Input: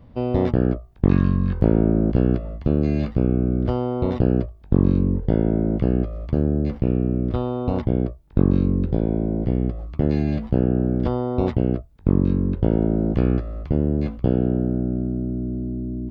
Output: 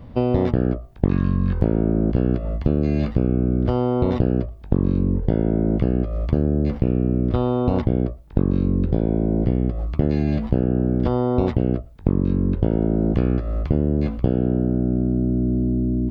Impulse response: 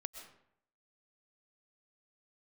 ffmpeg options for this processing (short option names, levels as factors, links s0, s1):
-filter_complex "[0:a]acompressor=threshold=0.0794:ratio=5,asplit=2[s0][s1];[1:a]atrim=start_sample=2205,afade=t=out:st=0.17:d=0.01,atrim=end_sample=7938[s2];[s1][s2]afir=irnorm=-1:irlink=0,volume=0.531[s3];[s0][s3]amix=inputs=2:normalize=0,volume=1.68"